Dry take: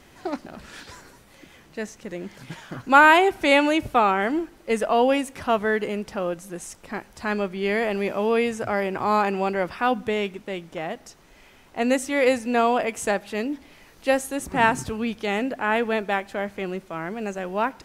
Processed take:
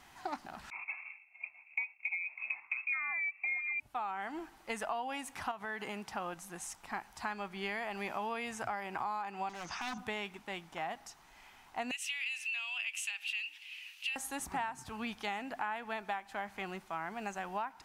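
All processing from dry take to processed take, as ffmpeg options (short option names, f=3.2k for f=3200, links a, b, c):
-filter_complex "[0:a]asettb=1/sr,asplit=3[a][b][c];[a]atrim=end=0.704[d];[b]atrim=start=0.7:end=3.8,asetpts=PTS-STARTPTS,afade=t=in:d=0.004:c=qsin,afade=t=out:st=3.096:d=0.004:c=qsin,lowshelf=f=720:t=q:w=3:g=10.5,lowpass=f=2.3k:t=q:w=0.5098,lowpass=f=2.3k:t=q:w=0.6013,lowpass=f=2.3k:t=q:w=0.9,lowpass=f=2.3k:t=q:w=2.563,afreqshift=-2700,agate=range=-33dB:threshold=-33dB:ratio=3:release=100:detection=peak[e];[c]atrim=start=3.796[f];[d][e]acrossfade=d=0.004:c1=hsin:c2=qsin[g];[g][f]acrossfade=d=0.004:c1=qsin:c2=hsin,asettb=1/sr,asplit=3[h][i][j];[h]atrim=end=5.514[k];[i]atrim=start=5.51:end=6.12,asetpts=PTS-STARTPTS,afade=t=in:d=0.004:c=qsin,afade=t=out:st=0.606:d=0.004:c=qsin,highpass=82,acompressor=threshold=-24dB:ratio=4:attack=3.2:release=140:knee=1:detection=peak[l];[j]atrim=start=6.116[m];[k][l]acrossfade=d=0.004:c1=hsin:c2=qsin[n];[n][m]acrossfade=d=0.004:c1=qsin:c2=hsin,asettb=1/sr,asplit=3[o][p][q];[o]atrim=end=9.494[r];[p]atrim=start=9.49:end=9.98,asetpts=PTS-STARTPTS,afade=t=in:d=0.004:c=qsin,afade=t=out:st=0.486:d=0.004:c=qsin,acrossover=split=410|3000[s][t][u];[t]acompressor=threshold=-33dB:ratio=4:attack=3.2:release=140:knee=2.83:detection=peak[v];[s][v][u]amix=inputs=3:normalize=0,lowpass=f=6.3k:t=q:w=15,aeval=exprs='0.0596*(abs(mod(val(0)/0.0596+3,4)-2)-1)':c=same[w];[q]atrim=start=9.976[x];[r][w]acrossfade=d=0.004:c1=hsin:c2=qsin[y];[y][x]acrossfade=d=0.004:c1=qsin:c2=hsin,asettb=1/sr,asplit=3[z][aa][ab];[z]atrim=end=11.914[ac];[aa]atrim=start=11.91:end=14.16,asetpts=PTS-STARTPTS,afade=t=in:d=0.004:c=qsin,afade=t=out:st=2.246:d=0.004:c=qsin,acompressor=threshold=-29dB:ratio=3:attack=3.2:release=140:knee=1:detection=peak,highpass=f=2.7k:t=q:w=9.5[ad];[ab]atrim=start=14.156[ae];[ac][ad]acrossfade=d=0.004:c1=hsin:c2=qsin[af];[af][ae]acrossfade=d=0.004:c1=qsin:c2=hsin,lowshelf=f=650:t=q:w=3:g=-6.5,acompressor=threshold=-28dB:ratio=20,volume=-5.5dB"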